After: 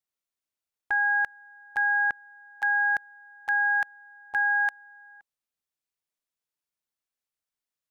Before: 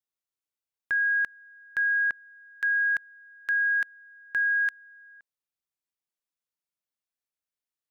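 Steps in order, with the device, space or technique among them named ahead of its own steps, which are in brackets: octave pedal (harmoniser -12 st -8 dB)

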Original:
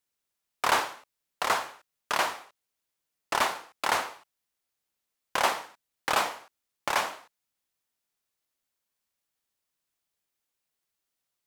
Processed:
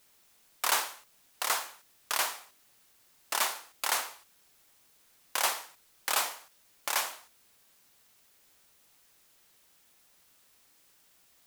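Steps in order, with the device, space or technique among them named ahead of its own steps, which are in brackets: turntable without a phono preamp (RIAA curve recording; white noise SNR 27 dB); gain -6.5 dB

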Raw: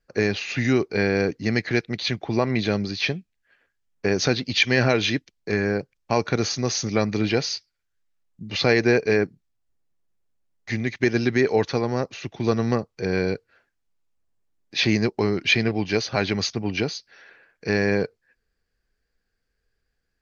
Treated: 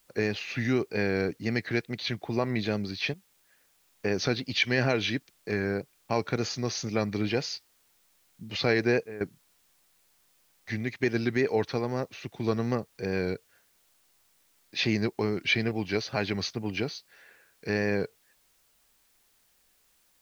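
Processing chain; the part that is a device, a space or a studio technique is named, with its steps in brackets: worn cassette (LPF 6200 Hz; wow and flutter; level dips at 3.14/9.03, 0.176 s -14 dB; white noise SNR 36 dB); gain -6 dB

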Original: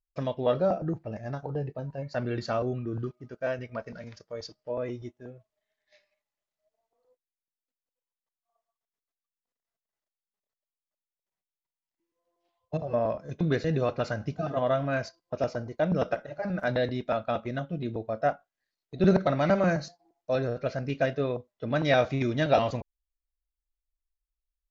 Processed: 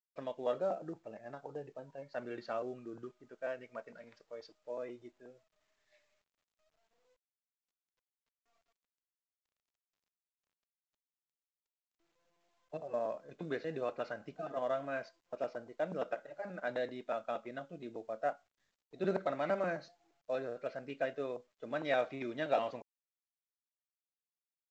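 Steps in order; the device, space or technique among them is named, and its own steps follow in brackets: telephone (BPF 310–3400 Hz; gain -8.5 dB; µ-law 128 kbps 16000 Hz)

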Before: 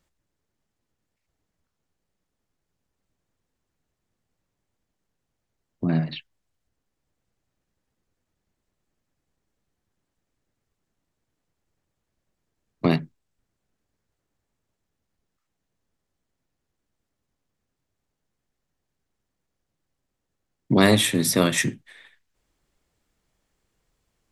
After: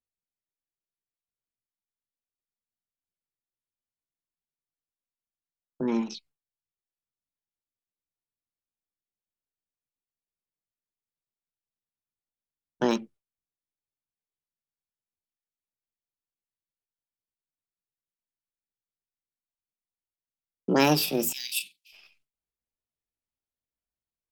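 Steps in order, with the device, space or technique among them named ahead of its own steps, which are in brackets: gate with hold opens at -55 dBFS; 21.34–21.95 inverse Chebyshev high-pass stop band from 940 Hz, stop band 40 dB; chipmunk voice (pitch shift +6 st); gain -4.5 dB

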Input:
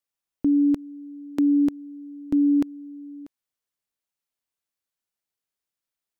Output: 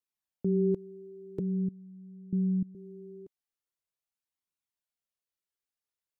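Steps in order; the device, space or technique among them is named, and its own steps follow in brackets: alien voice (ring modulator 100 Hz; flange 0.44 Hz, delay 0.7 ms, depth 1.9 ms, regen -34%); 1.39–2.75 inverse Chebyshev low-pass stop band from 860 Hz, stop band 60 dB

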